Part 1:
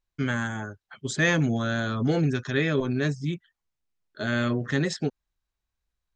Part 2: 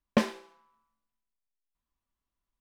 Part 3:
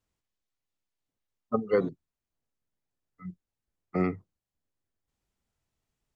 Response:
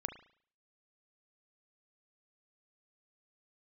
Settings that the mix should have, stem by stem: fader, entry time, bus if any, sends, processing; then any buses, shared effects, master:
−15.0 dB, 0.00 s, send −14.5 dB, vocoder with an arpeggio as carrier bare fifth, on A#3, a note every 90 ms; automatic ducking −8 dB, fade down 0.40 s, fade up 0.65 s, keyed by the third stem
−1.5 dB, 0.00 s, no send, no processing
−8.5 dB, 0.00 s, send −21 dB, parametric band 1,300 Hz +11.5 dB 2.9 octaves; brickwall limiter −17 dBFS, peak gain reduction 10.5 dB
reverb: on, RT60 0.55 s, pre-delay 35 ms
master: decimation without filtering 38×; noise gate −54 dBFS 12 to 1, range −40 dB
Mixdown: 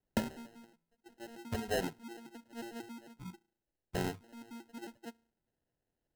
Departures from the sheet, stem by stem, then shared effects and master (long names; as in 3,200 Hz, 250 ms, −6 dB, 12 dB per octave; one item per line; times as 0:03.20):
stem 1 −15.0 dB → −22.0 dB
stem 2 −1.5 dB → −8.5 dB
master: missing noise gate −54 dBFS 12 to 1, range −40 dB